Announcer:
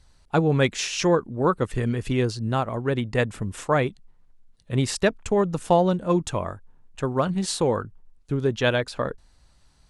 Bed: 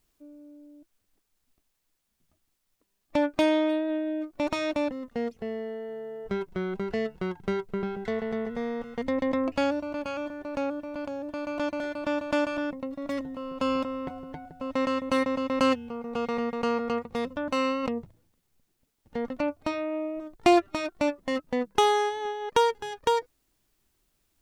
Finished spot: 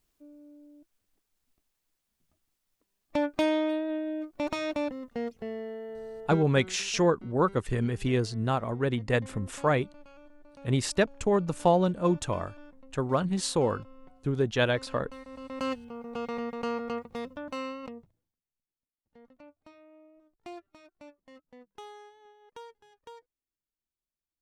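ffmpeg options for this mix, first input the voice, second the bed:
ffmpeg -i stem1.wav -i stem2.wav -filter_complex "[0:a]adelay=5950,volume=-3.5dB[link_01];[1:a]volume=13dB,afade=type=out:start_time=6.19:duration=0.59:silence=0.125893,afade=type=in:start_time=15.23:duration=0.75:silence=0.158489,afade=type=out:start_time=16.95:duration=1.5:silence=0.105925[link_02];[link_01][link_02]amix=inputs=2:normalize=0" out.wav

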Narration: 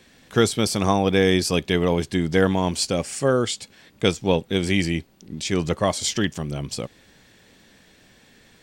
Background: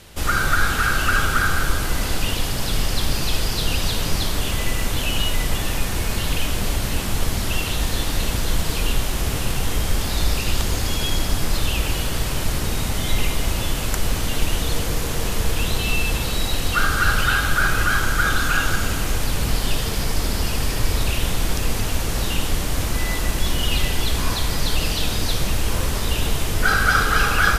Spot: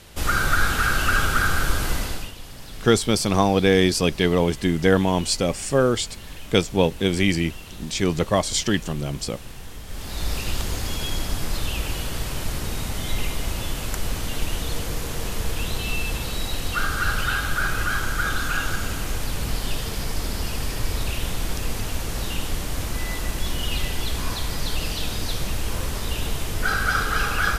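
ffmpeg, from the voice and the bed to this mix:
ffmpeg -i stem1.wav -i stem2.wav -filter_complex "[0:a]adelay=2500,volume=1dB[link_01];[1:a]volume=10dB,afade=type=out:start_time=1.9:duration=0.42:silence=0.177828,afade=type=in:start_time=9.86:duration=0.5:silence=0.266073[link_02];[link_01][link_02]amix=inputs=2:normalize=0" out.wav

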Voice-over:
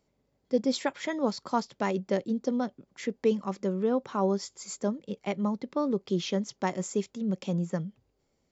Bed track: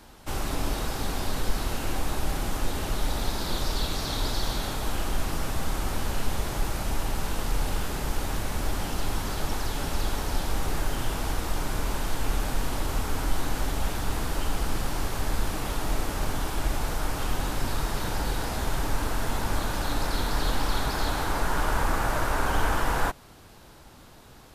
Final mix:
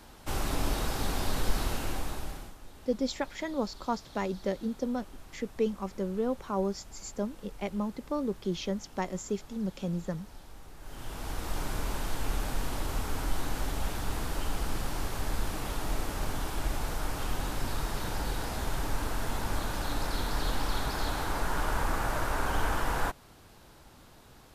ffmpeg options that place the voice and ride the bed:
ffmpeg -i stem1.wav -i stem2.wav -filter_complex "[0:a]adelay=2350,volume=-3.5dB[link_01];[1:a]volume=15.5dB,afade=type=out:start_time=1.62:duration=0.93:silence=0.1,afade=type=in:start_time=10.79:duration=0.8:silence=0.141254[link_02];[link_01][link_02]amix=inputs=2:normalize=0" out.wav

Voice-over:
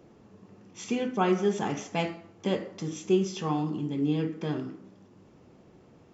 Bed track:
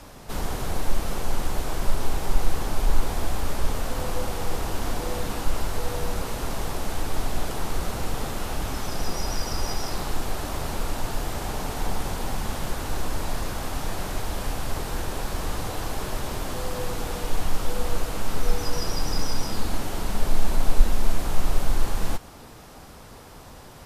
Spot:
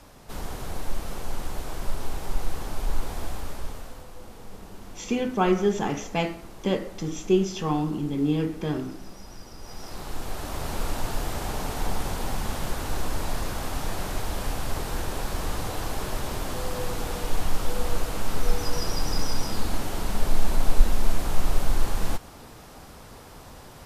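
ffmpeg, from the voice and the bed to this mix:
ffmpeg -i stem1.wav -i stem2.wav -filter_complex "[0:a]adelay=4200,volume=3dB[link_01];[1:a]volume=10.5dB,afade=type=out:start_time=3.25:duration=0.82:silence=0.281838,afade=type=in:start_time=9.59:duration=1.26:silence=0.158489[link_02];[link_01][link_02]amix=inputs=2:normalize=0" out.wav

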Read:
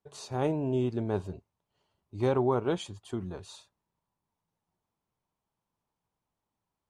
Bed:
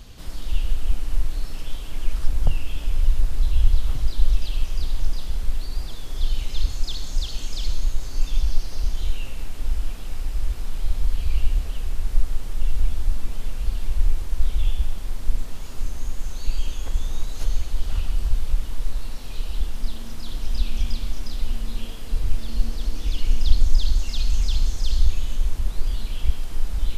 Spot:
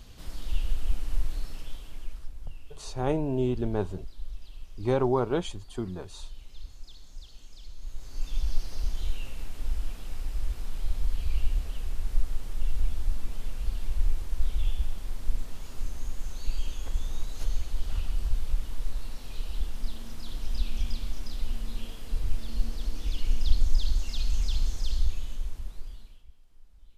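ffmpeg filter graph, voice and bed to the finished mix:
ffmpeg -i stem1.wav -i stem2.wav -filter_complex "[0:a]adelay=2650,volume=1.5dB[link_01];[1:a]volume=8.5dB,afade=type=out:start_time=1.32:duration=1:silence=0.188365,afade=type=in:start_time=7.76:duration=0.8:silence=0.199526,afade=type=out:start_time=24.75:duration=1.5:silence=0.0530884[link_02];[link_01][link_02]amix=inputs=2:normalize=0" out.wav

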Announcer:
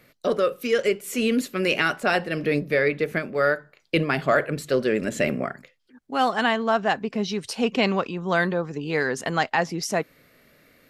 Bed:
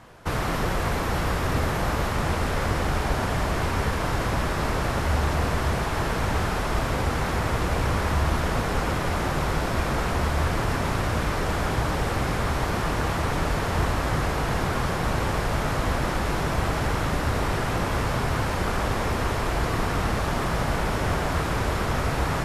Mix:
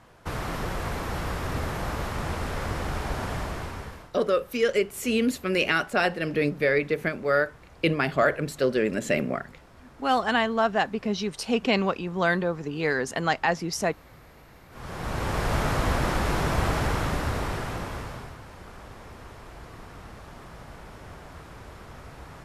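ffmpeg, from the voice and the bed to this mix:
ffmpeg -i stem1.wav -i stem2.wav -filter_complex "[0:a]adelay=3900,volume=-1.5dB[link_01];[1:a]volume=21.5dB,afade=type=out:start_time=3.34:duration=0.77:silence=0.0841395,afade=type=in:start_time=14.7:duration=0.84:silence=0.0446684,afade=type=out:start_time=16.7:duration=1.67:silence=0.112202[link_02];[link_01][link_02]amix=inputs=2:normalize=0" out.wav

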